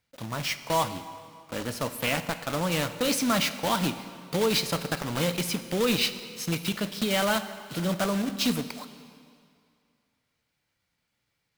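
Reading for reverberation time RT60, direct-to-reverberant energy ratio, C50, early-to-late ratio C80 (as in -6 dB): 2.3 s, 10.5 dB, 12.0 dB, 13.0 dB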